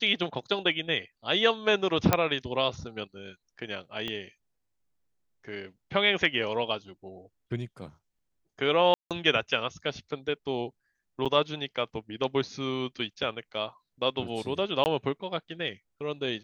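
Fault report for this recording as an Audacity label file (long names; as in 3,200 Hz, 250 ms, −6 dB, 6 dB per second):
2.130000	2.130000	click −6 dBFS
4.080000	4.080000	click −20 dBFS
8.940000	9.110000	drop-out 167 ms
11.250000	11.260000	drop-out 6.7 ms
14.840000	14.860000	drop-out 19 ms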